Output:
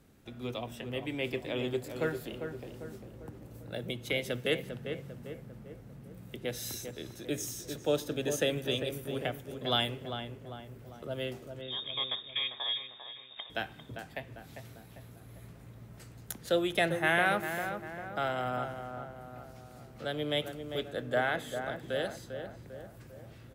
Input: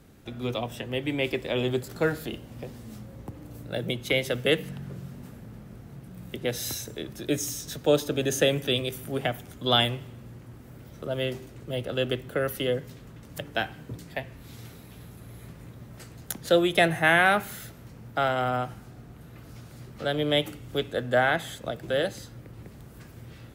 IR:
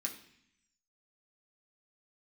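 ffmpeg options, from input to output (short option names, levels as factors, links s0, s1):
-filter_complex "[0:a]asettb=1/sr,asplit=3[s0][s1][s2];[s0]atrim=end=11.614[s3];[s1]atrim=start=11.61:end=13.5,asetpts=PTS-STARTPTS,afade=t=in:d=0.004:c=qsin,afade=t=out:st=1.886:d=0.004:c=qsin,lowpass=f=3200:t=q:w=0.5098,lowpass=f=3200:t=q:w=0.6013,lowpass=f=3200:t=q:w=0.9,lowpass=f=3200:t=q:w=2.563,afreqshift=-3800[s4];[s2]atrim=start=13.496[s5];[s3][s4]acrossfade=d=0.004:c1=hsin:c2=qsin[s6];[s6][s5]acrossfade=d=0.004:c1=qsin:c2=hsin,asplit=2[s7][s8];[s8]adelay=398,lowpass=f=1700:p=1,volume=0.447,asplit=2[s9][s10];[s10]adelay=398,lowpass=f=1700:p=1,volume=0.53,asplit=2[s11][s12];[s12]adelay=398,lowpass=f=1700:p=1,volume=0.53,asplit=2[s13][s14];[s14]adelay=398,lowpass=f=1700:p=1,volume=0.53,asplit=2[s15][s16];[s16]adelay=398,lowpass=f=1700:p=1,volume=0.53,asplit=2[s17][s18];[s18]adelay=398,lowpass=f=1700:p=1,volume=0.53[s19];[s7][s9][s11][s13][s15][s17][s19]amix=inputs=7:normalize=0,asplit=2[s20][s21];[1:a]atrim=start_sample=2205[s22];[s21][s22]afir=irnorm=-1:irlink=0,volume=0.112[s23];[s20][s23]amix=inputs=2:normalize=0,volume=0.422"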